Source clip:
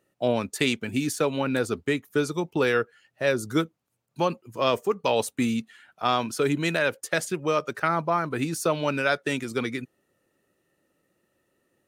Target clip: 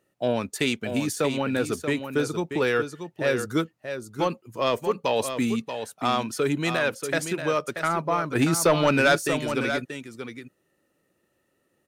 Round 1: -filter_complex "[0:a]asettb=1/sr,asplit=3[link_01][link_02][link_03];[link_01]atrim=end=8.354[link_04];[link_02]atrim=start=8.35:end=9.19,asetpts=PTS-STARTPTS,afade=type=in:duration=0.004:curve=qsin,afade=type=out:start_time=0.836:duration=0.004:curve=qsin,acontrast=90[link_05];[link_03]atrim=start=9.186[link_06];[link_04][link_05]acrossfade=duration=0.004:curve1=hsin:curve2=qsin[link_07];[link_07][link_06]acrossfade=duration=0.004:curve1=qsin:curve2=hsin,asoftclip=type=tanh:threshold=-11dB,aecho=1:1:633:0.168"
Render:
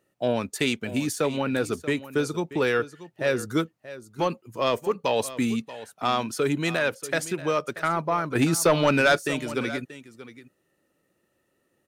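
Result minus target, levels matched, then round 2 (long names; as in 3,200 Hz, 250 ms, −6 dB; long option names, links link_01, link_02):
echo-to-direct −7 dB
-filter_complex "[0:a]asettb=1/sr,asplit=3[link_01][link_02][link_03];[link_01]atrim=end=8.354[link_04];[link_02]atrim=start=8.35:end=9.19,asetpts=PTS-STARTPTS,afade=type=in:duration=0.004:curve=qsin,afade=type=out:start_time=0.836:duration=0.004:curve=qsin,acontrast=90[link_05];[link_03]atrim=start=9.186[link_06];[link_04][link_05]acrossfade=duration=0.004:curve1=hsin:curve2=qsin[link_07];[link_07][link_06]acrossfade=duration=0.004:curve1=qsin:curve2=hsin,asoftclip=type=tanh:threshold=-11dB,aecho=1:1:633:0.376"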